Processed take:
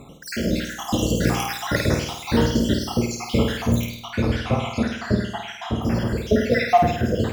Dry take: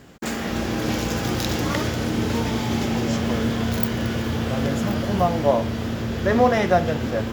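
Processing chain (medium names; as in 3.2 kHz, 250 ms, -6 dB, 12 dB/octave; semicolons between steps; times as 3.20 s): random holes in the spectrogram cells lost 73%; 3.82–5.82 s: distance through air 53 m; flutter echo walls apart 8.8 m, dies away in 0.65 s; trim +5.5 dB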